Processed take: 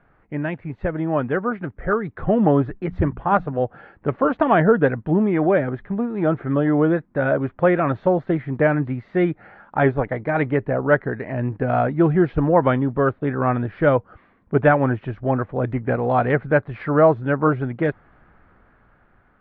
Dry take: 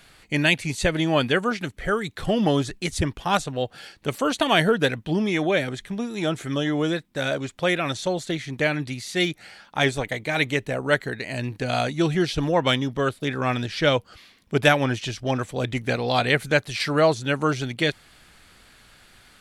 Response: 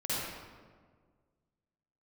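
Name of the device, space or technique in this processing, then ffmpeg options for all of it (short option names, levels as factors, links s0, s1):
action camera in a waterproof case: -filter_complex "[0:a]asettb=1/sr,asplit=3[s0][s1][s2];[s0]atrim=end=2.824[s3];[s1]atrim=start=2.82:end=3.59,asetpts=PTS-STARTPTS,afade=t=in:d=0.004:c=qsin,afade=t=out:st=0.766:d=0.004:c=qsin,bandreject=f=60:t=h:w=6,bandreject=f=120:t=h:w=6,bandreject=f=180:t=h:w=6,bandreject=f=240:t=h:w=6[s4];[s2]atrim=start=3.586[s5];[s3][s4]acrossfade=d=0.004:c1=hsin:c2=qsin[s6];[s6][s5]acrossfade=d=0.004:c1=qsin:c2=hsin,lowpass=f=1500:w=0.5412,lowpass=f=1500:w=1.3066,dynaudnorm=f=650:g=5:m=3.16,volume=0.794" -ar 44100 -c:a aac -b:a 48k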